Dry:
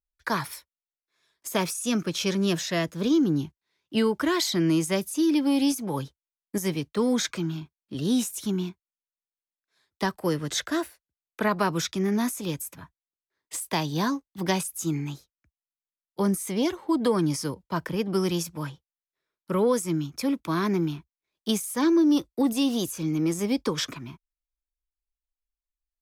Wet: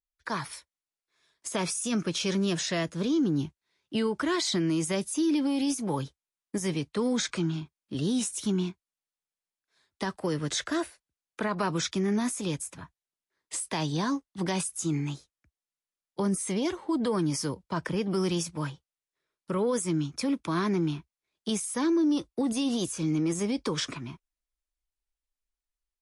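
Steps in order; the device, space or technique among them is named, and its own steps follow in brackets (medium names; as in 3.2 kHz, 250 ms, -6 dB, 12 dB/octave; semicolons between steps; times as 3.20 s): low-bitrate web radio (level rider gain up to 7.5 dB; peak limiter -13 dBFS, peak gain reduction 8 dB; trim -6.5 dB; MP3 48 kbps 24 kHz)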